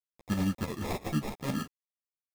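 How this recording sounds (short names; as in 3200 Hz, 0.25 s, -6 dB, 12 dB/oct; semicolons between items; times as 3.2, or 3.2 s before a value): a quantiser's noise floor 8-bit, dither none; tremolo saw up 9.3 Hz, depth 60%; aliases and images of a low sample rate 1500 Hz, jitter 0%; a shimmering, thickened sound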